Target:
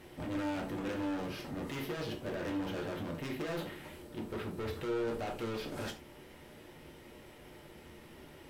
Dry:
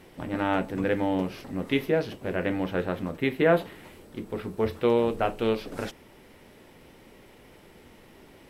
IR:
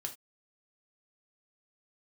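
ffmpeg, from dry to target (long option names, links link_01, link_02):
-filter_complex "[0:a]alimiter=limit=-20dB:level=0:latency=1:release=22,volume=34dB,asoftclip=hard,volume=-34dB[link_01];[1:a]atrim=start_sample=2205[link_02];[link_01][link_02]afir=irnorm=-1:irlink=0"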